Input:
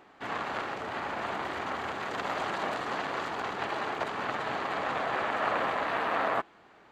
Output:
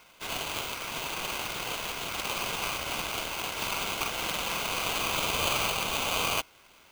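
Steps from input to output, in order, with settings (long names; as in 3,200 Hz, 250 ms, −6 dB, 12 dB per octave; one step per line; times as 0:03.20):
0:03.51–0:05.72: double-tracking delay 45 ms −5 dB
ring modulator with a square carrier 1,800 Hz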